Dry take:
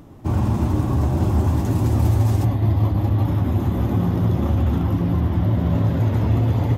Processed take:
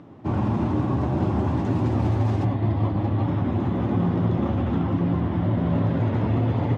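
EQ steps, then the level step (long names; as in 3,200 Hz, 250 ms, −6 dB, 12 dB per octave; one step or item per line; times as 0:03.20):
band-pass filter 130–3,200 Hz
0.0 dB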